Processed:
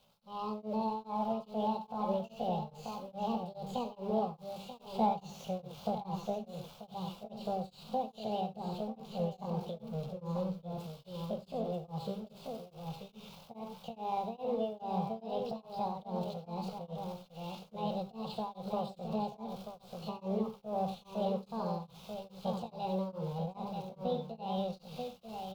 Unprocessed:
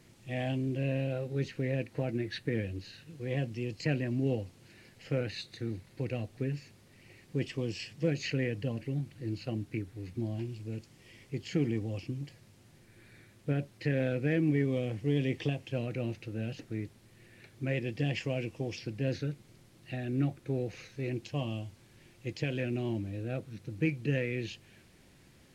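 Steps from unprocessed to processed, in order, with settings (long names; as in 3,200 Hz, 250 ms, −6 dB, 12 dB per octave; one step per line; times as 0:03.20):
spike at every zero crossing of −26.5 dBFS
source passing by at 0:05.60, 7 m/s, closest 5.2 metres
camcorder AGC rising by 22 dB per second
high-shelf EQ 3,400 Hz −2.5 dB
hum removal 63.42 Hz, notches 4
pitch shifter +8 semitones
phaser with its sweep stopped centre 760 Hz, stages 4
floating-point word with a short mantissa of 4 bits
high-frequency loss of the air 360 metres
single-tap delay 937 ms −7 dB
reverb whose tail is shaped and stops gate 110 ms rising, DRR 6.5 dB
tremolo along a rectified sine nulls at 2.4 Hz
level +8.5 dB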